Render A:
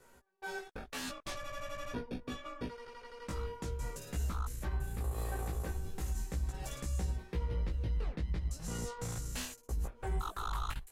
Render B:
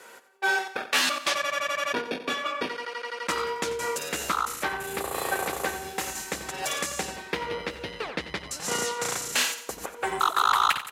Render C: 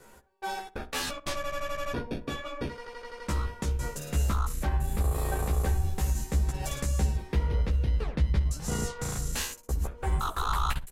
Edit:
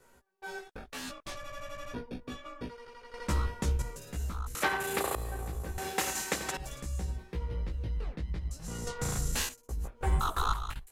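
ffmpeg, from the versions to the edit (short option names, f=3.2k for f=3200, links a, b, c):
-filter_complex "[2:a]asplit=3[a][b][c];[1:a]asplit=2[d][e];[0:a]asplit=6[f][g][h][i][j][k];[f]atrim=end=3.142[l];[a]atrim=start=3.138:end=3.822[m];[g]atrim=start=3.818:end=4.552[n];[d]atrim=start=4.548:end=5.152[o];[h]atrim=start=5.148:end=5.782[p];[e]atrim=start=5.778:end=6.572[q];[i]atrim=start=6.568:end=8.872[r];[b]atrim=start=8.868:end=9.492[s];[j]atrim=start=9.488:end=10.012[t];[c]atrim=start=10.008:end=10.532[u];[k]atrim=start=10.528[v];[l][m]acrossfade=d=0.004:c1=hsin:c2=hsin[w];[w][n]acrossfade=d=0.004:c1=hsin:c2=hsin[x];[x][o]acrossfade=d=0.004:c1=hsin:c2=hsin[y];[y][p]acrossfade=d=0.004:c1=hsin:c2=hsin[z];[z][q]acrossfade=d=0.004:c1=hsin:c2=hsin[aa];[aa][r]acrossfade=d=0.004:c1=hsin:c2=hsin[ab];[ab][s]acrossfade=d=0.004:c1=hsin:c2=hsin[ac];[ac][t]acrossfade=d=0.004:c1=hsin:c2=hsin[ad];[ad][u]acrossfade=d=0.004:c1=hsin:c2=hsin[ae];[ae][v]acrossfade=d=0.004:c1=hsin:c2=hsin"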